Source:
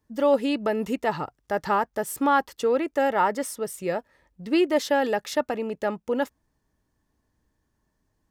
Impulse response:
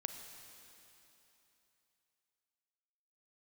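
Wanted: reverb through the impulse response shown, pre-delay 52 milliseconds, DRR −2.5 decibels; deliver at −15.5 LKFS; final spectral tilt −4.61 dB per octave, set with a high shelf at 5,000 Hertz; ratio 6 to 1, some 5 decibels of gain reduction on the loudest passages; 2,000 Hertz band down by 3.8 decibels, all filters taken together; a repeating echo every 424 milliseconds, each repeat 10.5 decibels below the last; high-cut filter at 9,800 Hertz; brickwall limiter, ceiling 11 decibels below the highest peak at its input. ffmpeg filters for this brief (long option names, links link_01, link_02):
-filter_complex "[0:a]lowpass=9800,equalizer=frequency=2000:width_type=o:gain=-4.5,highshelf=frequency=5000:gain=-4,acompressor=threshold=-22dB:ratio=6,alimiter=level_in=1dB:limit=-24dB:level=0:latency=1,volume=-1dB,aecho=1:1:424|848|1272:0.299|0.0896|0.0269,asplit=2[link_01][link_02];[1:a]atrim=start_sample=2205,adelay=52[link_03];[link_02][link_03]afir=irnorm=-1:irlink=0,volume=3.5dB[link_04];[link_01][link_04]amix=inputs=2:normalize=0,volume=14.5dB"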